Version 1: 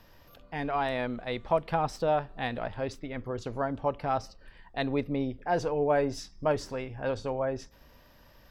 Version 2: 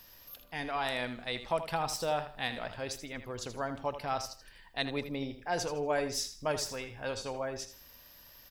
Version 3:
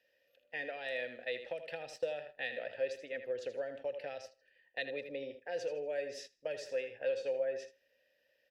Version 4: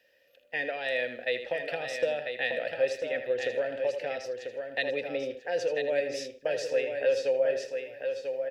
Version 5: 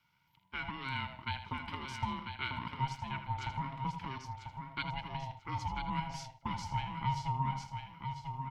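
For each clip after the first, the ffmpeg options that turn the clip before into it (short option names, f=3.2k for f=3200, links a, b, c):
-filter_complex "[0:a]crystalizer=i=7:c=0,asplit=2[a][b];[b]aecho=0:1:80|160|240:0.282|0.0789|0.0221[c];[a][c]amix=inputs=2:normalize=0,volume=-7.5dB"
-filter_complex "[0:a]acrossover=split=150|3000[a][b][c];[b]acompressor=threshold=-36dB:ratio=10[d];[a][d][c]amix=inputs=3:normalize=0,asplit=3[e][f][g];[e]bandpass=f=530:t=q:w=8,volume=0dB[h];[f]bandpass=f=1.84k:t=q:w=8,volume=-6dB[i];[g]bandpass=f=2.48k:t=q:w=8,volume=-9dB[j];[h][i][j]amix=inputs=3:normalize=0,agate=range=-12dB:threshold=-59dB:ratio=16:detection=peak,volume=10dB"
-af "aecho=1:1:993|1986|2979:0.473|0.104|0.0229,volume=8.5dB"
-af "aeval=exprs='val(0)*sin(2*PI*400*n/s)':c=same,volume=-5dB"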